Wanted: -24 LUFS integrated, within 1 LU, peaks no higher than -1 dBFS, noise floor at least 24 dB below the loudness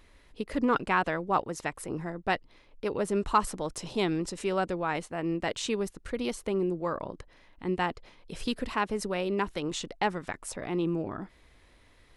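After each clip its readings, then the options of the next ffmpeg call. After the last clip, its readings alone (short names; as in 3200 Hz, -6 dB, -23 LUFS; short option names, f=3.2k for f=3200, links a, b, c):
loudness -31.5 LUFS; peak -10.5 dBFS; loudness target -24.0 LUFS
-> -af "volume=7.5dB"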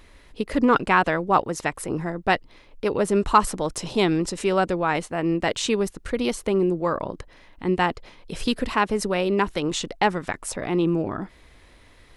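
loudness -24.0 LUFS; peak -3.0 dBFS; noise floor -53 dBFS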